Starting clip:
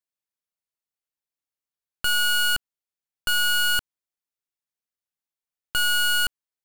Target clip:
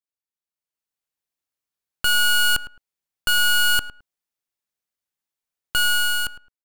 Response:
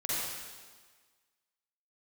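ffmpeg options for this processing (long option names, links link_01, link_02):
-filter_complex "[0:a]dynaudnorm=framelen=110:gausssize=13:maxgain=10dB,asplit=2[link_01][link_02];[link_02]adelay=107,lowpass=frequency=1500:poles=1,volume=-13dB,asplit=2[link_03][link_04];[link_04]adelay=107,lowpass=frequency=1500:poles=1,volume=0.21[link_05];[link_01][link_03][link_05]amix=inputs=3:normalize=0,volume=-6.5dB"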